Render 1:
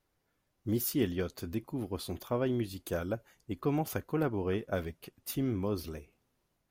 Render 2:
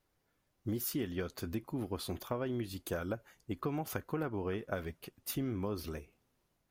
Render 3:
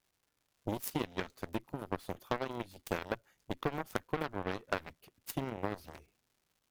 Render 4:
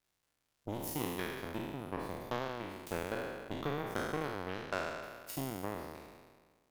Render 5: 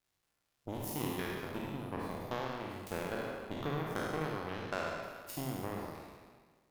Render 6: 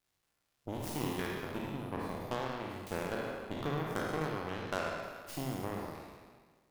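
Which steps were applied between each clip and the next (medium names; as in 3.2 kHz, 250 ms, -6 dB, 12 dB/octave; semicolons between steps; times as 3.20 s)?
dynamic bell 1.4 kHz, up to +4 dB, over -52 dBFS, Q 0.98; compression 10:1, threshold -32 dBFS, peak gain reduction 9 dB
crackle 280 per s -53 dBFS; Chebyshev shaper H 7 -15 dB, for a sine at -20 dBFS; trim +4.5 dB
spectral sustain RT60 1.59 s; trim -6 dB
reverberation RT60 0.70 s, pre-delay 47 ms, DRR 4 dB; trim -1.5 dB
tracing distortion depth 0.18 ms; trim +1 dB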